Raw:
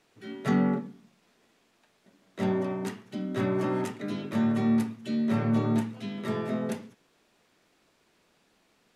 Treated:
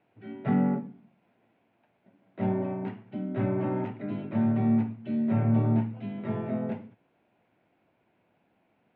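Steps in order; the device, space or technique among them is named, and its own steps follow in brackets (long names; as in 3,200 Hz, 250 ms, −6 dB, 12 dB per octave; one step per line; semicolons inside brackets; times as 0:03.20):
bass cabinet (loudspeaker in its box 74–2,300 Hz, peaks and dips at 110 Hz +7 dB, 430 Hz −5 dB, 720 Hz +3 dB, 1,200 Hz −9 dB, 1,800 Hz −7 dB)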